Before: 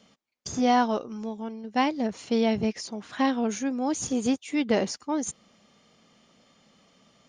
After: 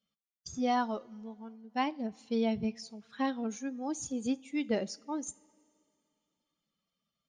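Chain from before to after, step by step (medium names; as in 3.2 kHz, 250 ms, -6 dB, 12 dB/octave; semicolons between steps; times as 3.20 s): expander on every frequency bin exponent 1.5; two-slope reverb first 0.29 s, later 2.5 s, from -18 dB, DRR 16.5 dB; trim -6 dB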